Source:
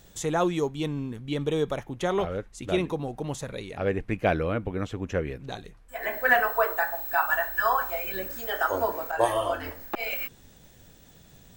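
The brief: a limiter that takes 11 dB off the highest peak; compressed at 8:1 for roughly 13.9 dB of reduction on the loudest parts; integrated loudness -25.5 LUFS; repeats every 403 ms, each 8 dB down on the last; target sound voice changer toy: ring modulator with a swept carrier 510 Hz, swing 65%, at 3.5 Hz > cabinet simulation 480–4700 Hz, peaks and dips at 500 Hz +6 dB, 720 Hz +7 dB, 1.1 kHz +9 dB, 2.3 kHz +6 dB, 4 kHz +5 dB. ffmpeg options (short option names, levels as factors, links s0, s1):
-af "acompressor=threshold=0.0282:ratio=8,alimiter=level_in=1.88:limit=0.0631:level=0:latency=1,volume=0.531,aecho=1:1:403|806|1209|1612|2015:0.398|0.159|0.0637|0.0255|0.0102,aeval=exprs='val(0)*sin(2*PI*510*n/s+510*0.65/3.5*sin(2*PI*3.5*n/s))':c=same,highpass=480,equalizer=f=500:t=q:w=4:g=6,equalizer=f=720:t=q:w=4:g=7,equalizer=f=1100:t=q:w=4:g=9,equalizer=f=2300:t=q:w=4:g=6,equalizer=f=4000:t=q:w=4:g=5,lowpass=f=4700:w=0.5412,lowpass=f=4700:w=1.3066,volume=4.47"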